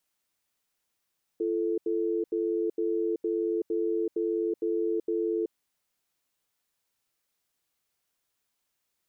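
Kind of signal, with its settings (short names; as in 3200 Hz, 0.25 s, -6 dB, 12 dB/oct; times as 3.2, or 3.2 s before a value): cadence 340 Hz, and 439 Hz, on 0.38 s, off 0.08 s, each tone -28 dBFS 4.10 s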